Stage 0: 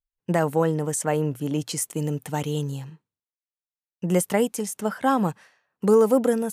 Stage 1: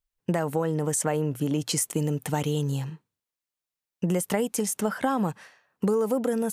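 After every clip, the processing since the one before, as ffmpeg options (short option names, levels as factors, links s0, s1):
-filter_complex "[0:a]asplit=2[s0][s1];[s1]alimiter=limit=0.133:level=0:latency=1:release=34,volume=0.794[s2];[s0][s2]amix=inputs=2:normalize=0,acompressor=threshold=0.0794:ratio=6"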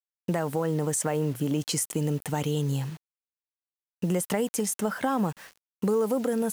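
-filter_complex "[0:a]asplit=2[s0][s1];[s1]alimiter=limit=0.1:level=0:latency=1:release=162,volume=1.33[s2];[s0][s2]amix=inputs=2:normalize=0,acrusher=bits=6:mix=0:aa=0.000001,volume=0.473"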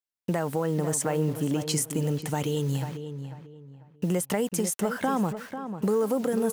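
-filter_complex "[0:a]asplit=2[s0][s1];[s1]adelay=494,lowpass=f=2100:p=1,volume=0.355,asplit=2[s2][s3];[s3]adelay=494,lowpass=f=2100:p=1,volume=0.3,asplit=2[s4][s5];[s5]adelay=494,lowpass=f=2100:p=1,volume=0.3[s6];[s0][s2][s4][s6]amix=inputs=4:normalize=0"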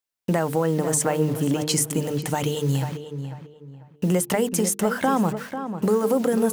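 -af "bandreject=f=50:t=h:w=6,bandreject=f=100:t=h:w=6,bandreject=f=150:t=h:w=6,bandreject=f=200:t=h:w=6,bandreject=f=250:t=h:w=6,bandreject=f=300:t=h:w=6,bandreject=f=350:t=h:w=6,bandreject=f=400:t=h:w=6,bandreject=f=450:t=h:w=6,volume=1.88"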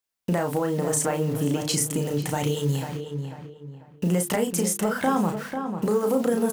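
-filter_complex "[0:a]asplit=2[s0][s1];[s1]acompressor=threshold=0.0282:ratio=6,volume=1[s2];[s0][s2]amix=inputs=2:normalize=0,asplit=2[s3][s4];[s4]adelay=34,volume=0.531[s5];[s3][s5]amix=inputs=2:normalize=0,volume=0.562"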